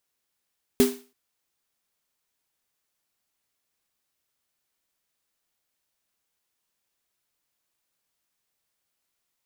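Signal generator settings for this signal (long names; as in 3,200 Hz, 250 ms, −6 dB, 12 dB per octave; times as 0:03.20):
synth snare length 0.33 s, tones 250 Hz, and 400 Hz, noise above 530 Hz, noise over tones −9 dB, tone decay 0.32 s, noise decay 0.37 s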